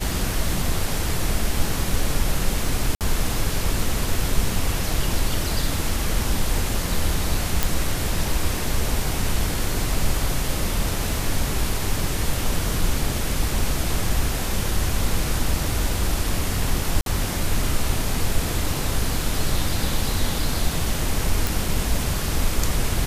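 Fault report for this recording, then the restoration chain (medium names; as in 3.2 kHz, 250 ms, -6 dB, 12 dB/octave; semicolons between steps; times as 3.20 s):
2.95–3.01 s: dropout 58 ms
7.63 s: pop
17.01–17.06 s: dropout 52 ms
21.47 s: pop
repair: de-click; interpolate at 2.95 s, 58 ms; interpolate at 17.01 s, 52 ms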